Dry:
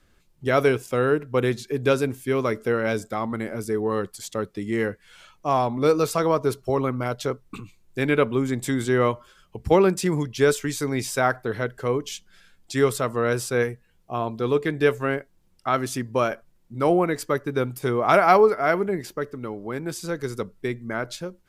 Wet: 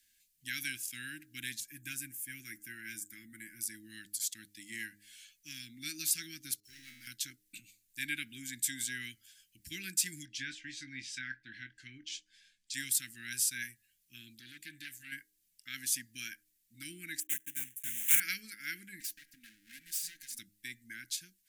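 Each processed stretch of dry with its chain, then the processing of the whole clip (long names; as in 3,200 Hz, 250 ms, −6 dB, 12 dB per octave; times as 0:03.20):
0:01.60–0:03.61: parametric band 4,000 Hz −14.5 dB 0.95 octaves + comb filter 6 ms, depth 39%
0:06.60–0:07.07: parametric band 5,100 Hz +8 dB 1 octave + leveller curve on the samples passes 2 + tuned comb filter 77 Hz, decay 0.91 s, mix 90%
0:10.25–0:12.74: treble cut that deepens with the level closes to 2,800 Hz, closed at −21.5 dBFS + high-frequency loss of the air 78 metres + double-tracking delay 23 ms −11 dB
0:14.35–0:15.12: downward compressor 2 to 1, threshold −23 dBFS + saturating transformer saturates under 1,000 Hz
0:17.20–0:18.20: one scale factor per block 3 bits + Butterworth band-reject 4,600 Hz, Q 1.3 + expander for the loud parts, over −35 dBFS
0:19.00–0:20.39: lower of the sound and its delayed copy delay 4.3 ms + downward compressor 10 to 1, threshold −32 dBFS
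whole clip: Chebyshev band-stop filter 320–1,600 Hz, order 5; first-order pre-emphasis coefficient 0.97; hum removal 103.1 Hz, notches 7; level +3 dB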